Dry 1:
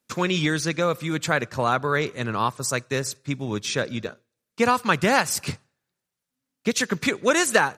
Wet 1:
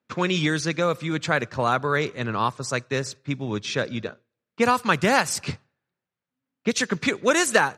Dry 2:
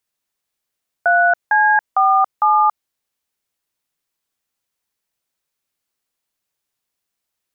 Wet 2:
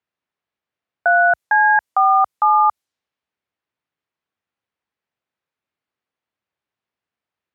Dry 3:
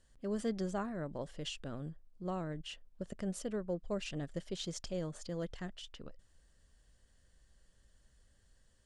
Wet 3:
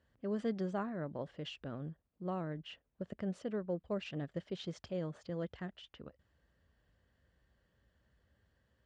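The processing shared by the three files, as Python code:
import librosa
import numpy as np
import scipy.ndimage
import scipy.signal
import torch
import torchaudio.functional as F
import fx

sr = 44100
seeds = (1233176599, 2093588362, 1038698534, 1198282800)

y = fx.env_lowpass(x, sr, base_hz=2500.0, full_db=-16.0)
y = scipy.signal.sosfilt(scipy.signal.butter(4, 61.0, 'highpass', fs=sr, output='sos'), y)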